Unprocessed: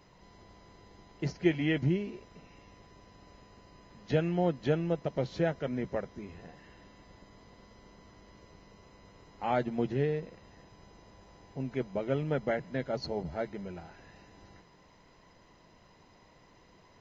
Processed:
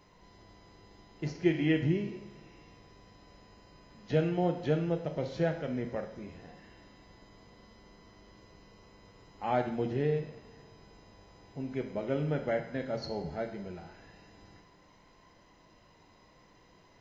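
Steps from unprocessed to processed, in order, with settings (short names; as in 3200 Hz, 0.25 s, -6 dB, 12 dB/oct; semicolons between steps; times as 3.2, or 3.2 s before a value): two-slope reverb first 0.73 s, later 2.9 s, from -20 dB, DRR 6.5 dB; harmonic-percussive split percussive -4 dB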